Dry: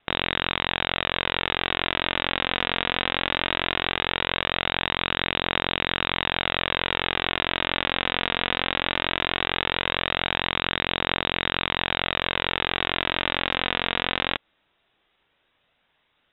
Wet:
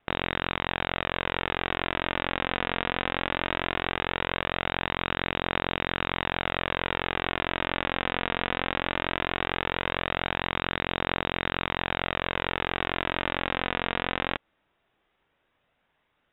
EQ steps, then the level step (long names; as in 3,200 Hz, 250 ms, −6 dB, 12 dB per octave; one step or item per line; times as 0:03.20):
high-frequency loss of the air 390 metres
0.0 dB